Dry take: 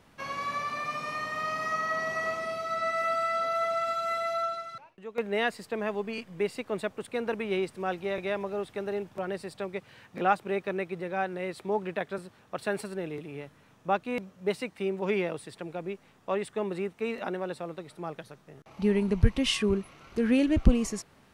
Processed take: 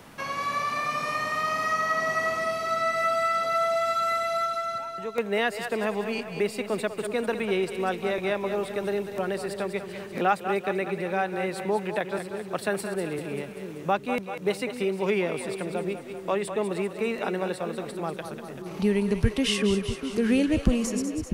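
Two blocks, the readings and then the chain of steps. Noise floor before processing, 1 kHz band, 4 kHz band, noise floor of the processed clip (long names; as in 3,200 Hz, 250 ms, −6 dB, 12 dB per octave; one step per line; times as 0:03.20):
−60 dBFS, +4.0 dB, +3.5 dB, −40 dBFS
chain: high-shelf EQ 7,300 Hz +8 dB
automatic gain control gain up to 3 dB
echo with a time of its own for lows and highs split 410 Hz, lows 647 ms, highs 194 ms, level −9.5 dB
multiband upward and downward compressor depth 40%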